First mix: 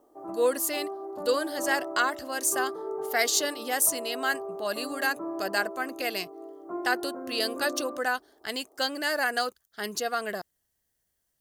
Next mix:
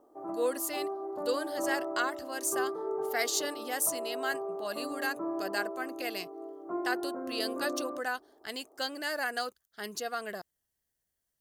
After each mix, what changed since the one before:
speech -6.0 dB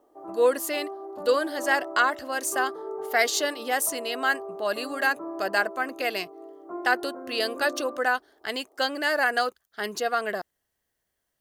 speech +10.0 dB; master: add tone controls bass -6 dB, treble -8 dB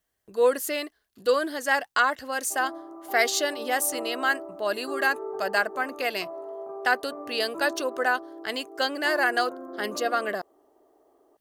background: entry +2.35 s

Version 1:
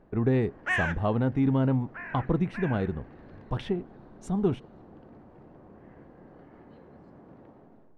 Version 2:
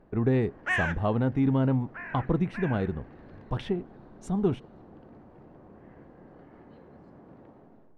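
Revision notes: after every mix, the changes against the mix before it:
none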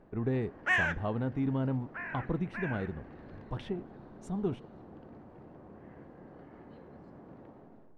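speech -7.0 dB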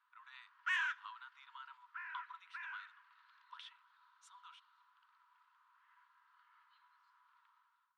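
master: add rippled Chebyshev high-pass 950 Hz, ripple 9 dB

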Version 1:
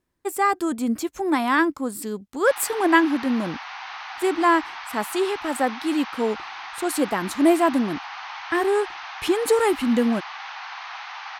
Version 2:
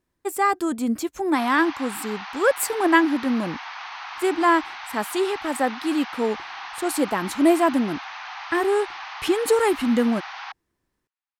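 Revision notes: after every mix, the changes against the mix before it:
background: entry -1.10 s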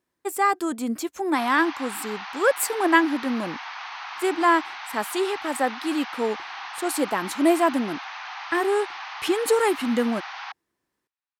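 master: add HPF 280 Hz 6 dB/oct

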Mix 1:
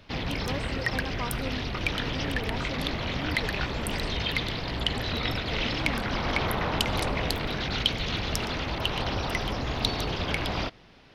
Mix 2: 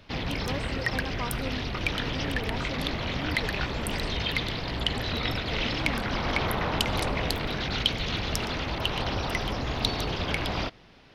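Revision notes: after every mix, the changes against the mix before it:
none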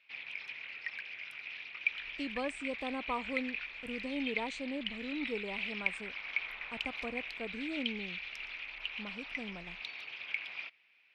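speech: entry +1.90 s; background: add band-pass 2400 Hz, Q 7.4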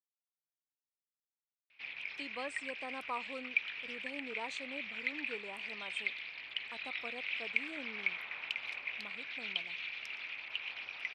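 speech: add HPF 870 Hz 6 dB/oct; background: entry +1.70 s

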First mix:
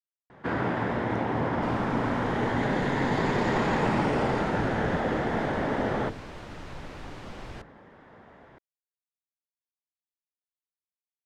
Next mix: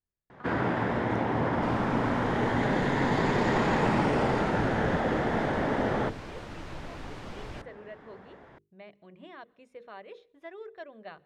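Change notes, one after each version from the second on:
speech: unmuted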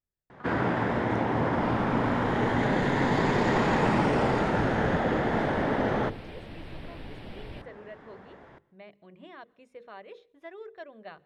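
first sound: send on; second sound: add fixed phaser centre 2900 Hz, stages 4

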